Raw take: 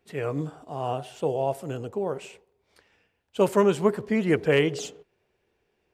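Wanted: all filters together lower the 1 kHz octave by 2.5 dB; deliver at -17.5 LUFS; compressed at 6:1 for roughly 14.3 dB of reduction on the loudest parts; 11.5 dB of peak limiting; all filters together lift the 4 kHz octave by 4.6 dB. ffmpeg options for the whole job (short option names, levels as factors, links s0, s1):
-af "equalizer=f=1000:t=o:g=-3.5,equalizer=f=4000:t=o:g=7.5,acompressor=threshold=0.0251:ratio=6,volume=17.8,alimiter=limit=0.447:level=0:latency=1"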